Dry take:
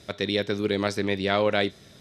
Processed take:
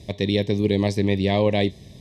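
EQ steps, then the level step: Butterworth band-stop 1.4 kHz, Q 1.8; bass shelf 120 Hz +6.5 dB; bass shelf 280 Hz +9 dB; 0.0 dB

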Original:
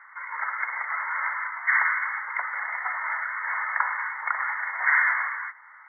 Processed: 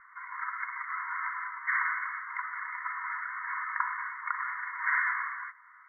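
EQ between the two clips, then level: brick-wall FIR high-pass 940 Hz; tilt EQ -5.5 dB/octave; -3.0 dB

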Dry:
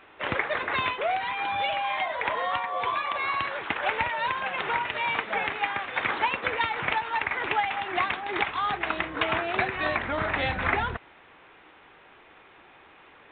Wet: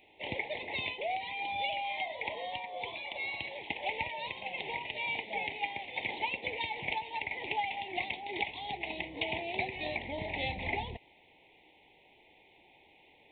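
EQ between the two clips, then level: elliptic band-stop 880–2100 Hz, stop band 60 dB; treble shelf 3.7 kHz +9.5 dB; -7.5 dB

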